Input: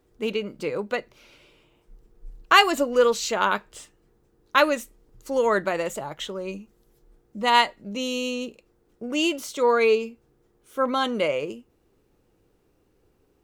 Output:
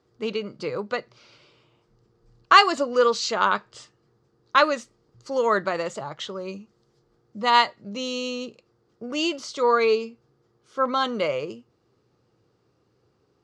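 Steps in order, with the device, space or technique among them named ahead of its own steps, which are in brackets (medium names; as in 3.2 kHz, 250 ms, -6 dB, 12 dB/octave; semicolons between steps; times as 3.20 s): car door speaker (cabinet simulation 100–6900 Hz, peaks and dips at 120 Hz +9 dB, 280 Hz -3 dB, 1.2 kHz +6 dB, 2.5 kHz -3 dB, 4.7 kHz +8 dB); trim -1 dB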